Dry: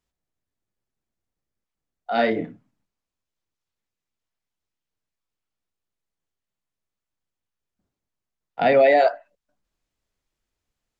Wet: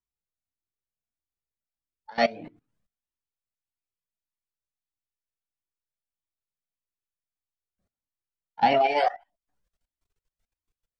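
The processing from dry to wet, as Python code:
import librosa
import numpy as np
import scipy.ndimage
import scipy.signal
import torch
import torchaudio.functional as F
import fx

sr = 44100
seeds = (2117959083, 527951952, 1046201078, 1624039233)

y = fx.level_steps(x, sr, step_db=20)
y = fx.formant_shift(y, sr, semitones=3)
y = fx.comb_cascade(y, sr, direction='rising', hz=1.6)
y = y * 10.0 ** (5.5 / 20.0)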